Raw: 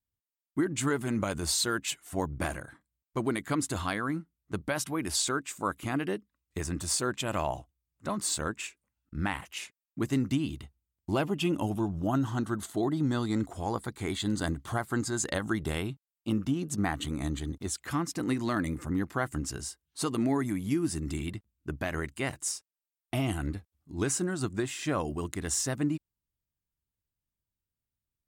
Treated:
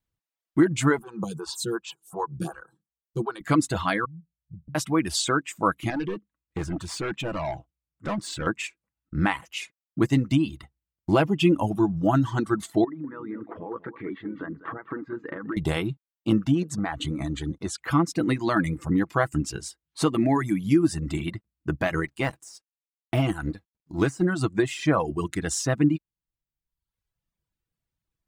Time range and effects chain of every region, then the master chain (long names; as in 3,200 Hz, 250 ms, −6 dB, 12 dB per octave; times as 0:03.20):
0:00.99–0:03.41: phaser with its sweep stopped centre 410 Hz, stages 8 + phaser with staggered stages 2.7 Hz
0:04.05–0:04.75: inverse Chebyshev low-pass filter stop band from 730 Hz, stop band 70 dB + downward compressor 3 to 1, threshold −48 dBFS
0:05.90–0:08.47: high-shelf EQ 5,300 Hz −10.5 dB + gain into a clipping stage and back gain 33 dB + highs frequency-modulated by the lows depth 0.15 ms
0:12.84–0:15.57: downward compressor 16 to 1, threshold −37 dBFS + loudspeaker in its box 190–2,100 Hz, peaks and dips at 280 Hz +6 dB, 440 Hz +8 dB, 730 Hz −9 dB, 1,200 Hz +5 dB, 1,800 Hz +5 dB + single-tap delay 200 ms −9 dB
0:16.62–0:17.80: low-pass filter 11,000 Hz + downward compressor 5 to 1, threshold −30 dBFS
0:22.06–0:24.25: mu-law and A-law mismatch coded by A + de-essing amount 90%
whole clip: comb filter 6.1 ms, depth 37%; reverb reduction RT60 1 s; high-shelf EQ 5,800 Hz −11.5 dB; level +8 dB